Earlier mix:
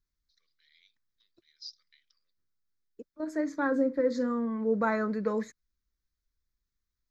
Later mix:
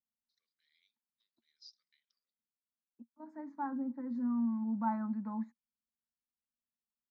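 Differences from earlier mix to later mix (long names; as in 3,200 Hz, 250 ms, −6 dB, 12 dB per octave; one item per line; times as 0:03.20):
first voice −11.5 dB
second voice: add pair of resonant band-passes 450 Hz, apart 1.9 octaves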